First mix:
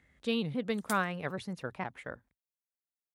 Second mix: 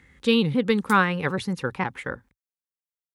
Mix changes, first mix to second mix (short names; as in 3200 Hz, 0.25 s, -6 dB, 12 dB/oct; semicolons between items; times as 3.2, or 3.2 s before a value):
speech +11.5 dB; master: add Butterworth band-stop 650 Hz, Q 3.4